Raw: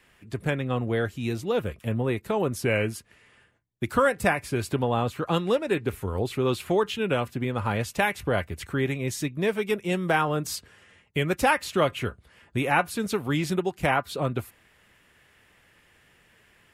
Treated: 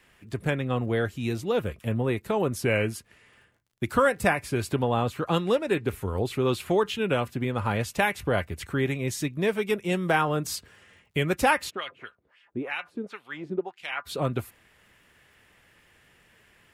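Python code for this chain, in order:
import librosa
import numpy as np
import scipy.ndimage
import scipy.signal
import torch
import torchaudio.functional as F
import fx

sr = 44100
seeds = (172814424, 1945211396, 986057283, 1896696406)

y = fx.dmg_crackle(x, sr, seeds[0], per_s=56.0, level_db=-56.0)
y = fx.wah_lfo(y, sr, hz=fx.line((11.69, 4.5), (14.05, 1.2)), low_hz=300.0, high_hz=3500.0, q=2.0, at=(11.69, 14.05), fade=0.02)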